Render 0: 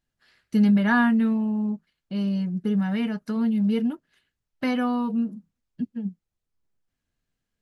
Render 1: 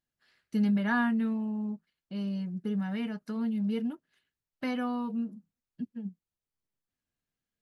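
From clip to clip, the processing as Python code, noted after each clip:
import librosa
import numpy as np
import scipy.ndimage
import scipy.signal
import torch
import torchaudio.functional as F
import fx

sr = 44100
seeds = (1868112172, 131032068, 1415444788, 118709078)

y = fx.low_shelf(x, sr, hz=63.0, db=-9.5)
y = y * 10.0 ** (-7.0 / 20.0)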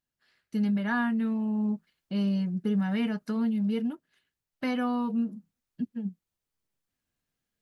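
y = fx.rider(x, sr, range_db=4, speed_s=0.5)
y = y * 10.0 ** (3.5 / 20.0)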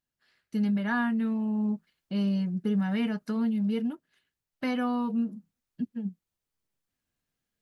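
y = x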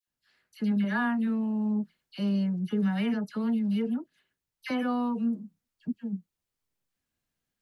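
y = fx.dispersion(x, sr, late='lows', ms=77.0, hz=1600.0)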